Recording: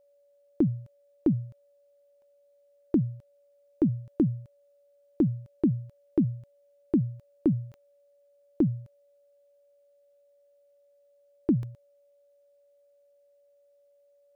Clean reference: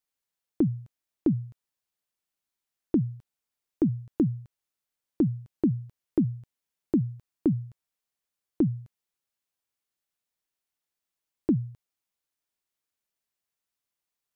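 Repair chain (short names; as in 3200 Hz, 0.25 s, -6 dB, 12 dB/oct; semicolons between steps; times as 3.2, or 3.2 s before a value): de-click; notch 570 Hz, Q 30; interpolate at 2.22/11.63, 1.5 ms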